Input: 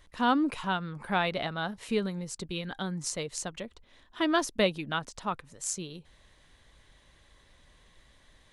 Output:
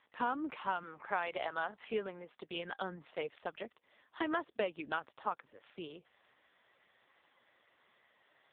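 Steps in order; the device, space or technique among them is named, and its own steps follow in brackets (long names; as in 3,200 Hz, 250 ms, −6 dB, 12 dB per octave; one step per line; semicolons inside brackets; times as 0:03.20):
0:00.83–0:02.51: high-pass filter 270 Hz 6 dB per octave
voicemail (band-pass filter 400–3,000 Hz; downward compressor 6 to 1, threshold −31 dBFS, peak gain reduction 10.5 dB; level +1 dB; AMR narrowband 5.15 kbit/s 8,000 Hz)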